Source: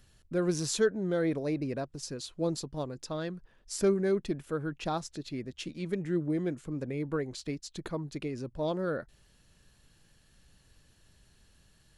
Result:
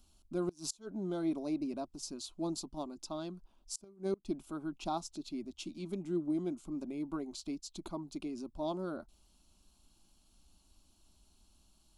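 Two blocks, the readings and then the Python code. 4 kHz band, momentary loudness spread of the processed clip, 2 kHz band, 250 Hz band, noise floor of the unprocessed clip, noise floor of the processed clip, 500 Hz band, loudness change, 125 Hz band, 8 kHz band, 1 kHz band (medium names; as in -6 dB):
-5.5 dB, 8 LU, -14.5 dB, -4.0 dB, -65 dBFS, -69 dBFS, -9.5 dB, -6.5 dB, -10.5 dB, -5.0 dB, -3.0 dB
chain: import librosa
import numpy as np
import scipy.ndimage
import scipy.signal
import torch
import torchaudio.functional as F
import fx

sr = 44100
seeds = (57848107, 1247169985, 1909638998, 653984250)

y = fx.fixed_phaser(x, sr, hz=480.0, stages=6)
y = fx.gate_flip(y, sr, shuts_db=-23.0, range_db=-27)
y = y * 10.0 ** (-1.5 / 20.0)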